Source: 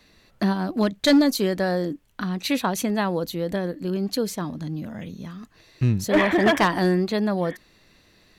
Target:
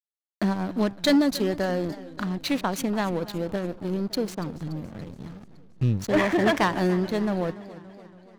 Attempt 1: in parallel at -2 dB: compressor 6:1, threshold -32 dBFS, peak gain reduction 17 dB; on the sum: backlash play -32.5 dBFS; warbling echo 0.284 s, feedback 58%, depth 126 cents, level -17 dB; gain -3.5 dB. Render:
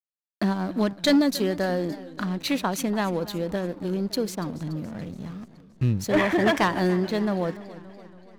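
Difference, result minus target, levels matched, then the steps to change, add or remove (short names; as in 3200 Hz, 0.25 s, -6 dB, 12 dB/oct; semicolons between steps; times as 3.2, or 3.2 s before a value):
backlash: distortion -7 dB
change: backlash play -24.5 dBFS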